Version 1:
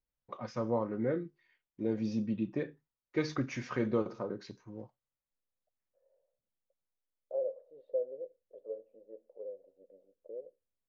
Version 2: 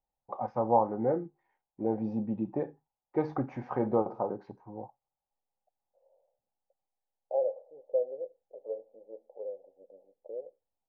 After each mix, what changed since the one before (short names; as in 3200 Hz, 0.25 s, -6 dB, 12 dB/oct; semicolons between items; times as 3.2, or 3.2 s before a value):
first voice: remove LPF 1600 Hz 6 dB/oct; master: add synth low-pass 810 Hz, resonance Q 10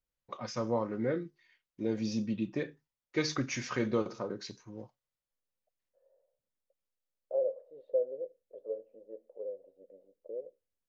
second voice +3.5 dB; master: remove synth low-pass 810 Hz, resonance Q 10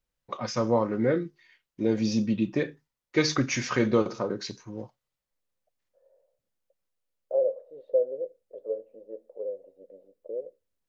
first voice +7.5 dB; second voice +6.0 dB